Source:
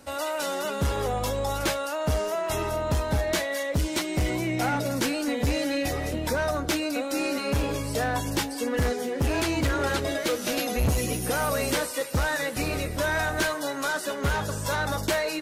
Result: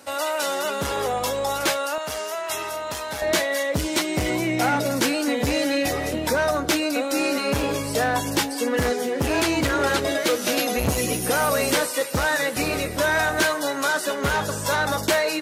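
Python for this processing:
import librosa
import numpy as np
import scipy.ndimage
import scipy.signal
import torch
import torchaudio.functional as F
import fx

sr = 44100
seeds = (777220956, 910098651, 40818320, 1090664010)

y = fx.highpass(x, sr, hz=fx.steps((0.0, 410.0), (1.98, 1400.0), (3.22, 190.0)), slope=6)
y = F.gain(torch.from_numpy(y), 5.5).numpy()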